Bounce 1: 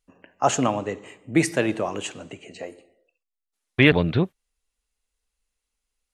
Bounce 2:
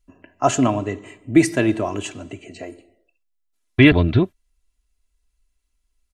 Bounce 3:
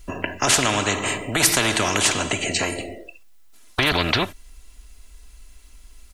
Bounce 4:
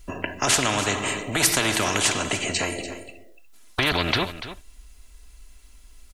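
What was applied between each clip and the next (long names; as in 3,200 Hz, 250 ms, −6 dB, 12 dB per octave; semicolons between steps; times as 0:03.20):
bass and treble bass +10 dB, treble 0 dB; comb filter 3 ms, depth 61%
boost into a limiter +10 dB; every bin compressed towards the loudest bin 4 to 1; level −1 dB
single-tap delay 290 ms −13 dB; level −2.5 dB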